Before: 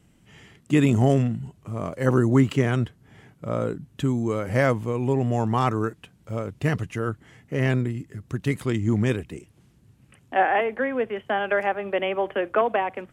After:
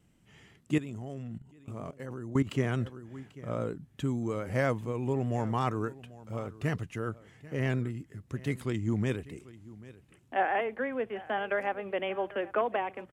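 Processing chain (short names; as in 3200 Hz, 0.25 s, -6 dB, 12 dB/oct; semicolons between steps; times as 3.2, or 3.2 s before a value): echo 0.791 s -19 dB; 0.78–2.47 level quantiser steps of 16 dB; vibrato 8.4 Hz 30 cents; gain -7.5 dB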